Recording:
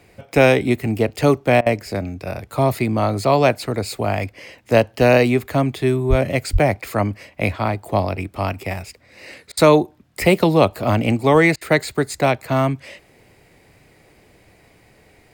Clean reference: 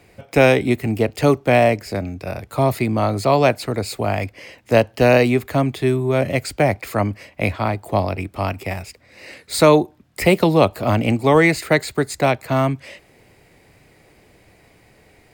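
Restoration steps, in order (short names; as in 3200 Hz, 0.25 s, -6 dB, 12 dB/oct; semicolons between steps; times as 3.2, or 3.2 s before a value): 6.09–6.21 HPF 140 Hz 24 dB/oct; 6.52–6.64 HPF 140 Hz 24 dB/oct; interpolate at 1.61/9.52/11.56, 51 ms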